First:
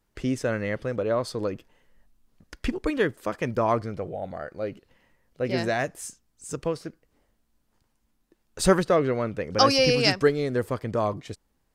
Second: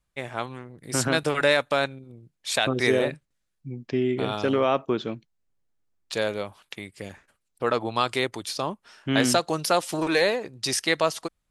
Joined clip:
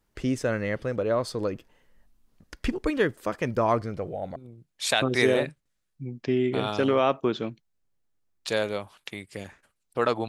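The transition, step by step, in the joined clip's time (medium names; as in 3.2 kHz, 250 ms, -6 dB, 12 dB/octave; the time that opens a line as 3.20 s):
first
4.36 s: go over to second from 2.01 s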